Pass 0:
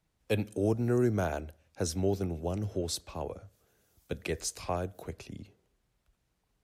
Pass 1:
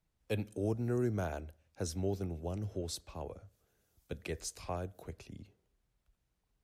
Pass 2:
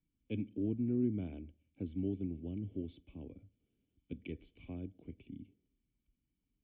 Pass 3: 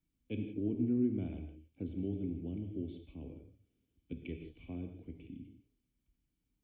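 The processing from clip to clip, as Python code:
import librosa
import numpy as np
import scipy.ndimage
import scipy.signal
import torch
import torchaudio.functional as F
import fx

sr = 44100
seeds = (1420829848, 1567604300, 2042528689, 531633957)

y1 = fx.low_shelf(x, sr, hz=73.0, db=7.0)
y1 = y1 * 10.0 ** (-6.5 / 20.0)
y2 = fx.formant_cascade(y1, sr, vowel='i')
y2 = y2 * 10.0 ** (7.5 / 20.0)
y3 = fx.rev_gated(y2, sr, seeds[0], gate_ms=200, shape='flat', drr_db=5.0)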